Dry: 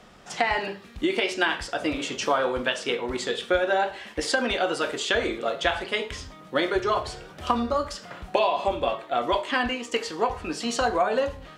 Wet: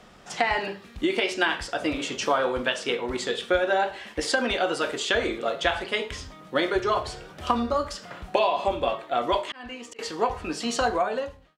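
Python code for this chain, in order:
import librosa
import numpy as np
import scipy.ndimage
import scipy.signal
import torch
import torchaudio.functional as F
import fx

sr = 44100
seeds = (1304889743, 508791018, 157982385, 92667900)

y = fx.fade_out_tail(x, sr, length_s=0.69)
y = fx.auto_swell(y, sr, attack_ms=569.0, at=(9.43, 9.99))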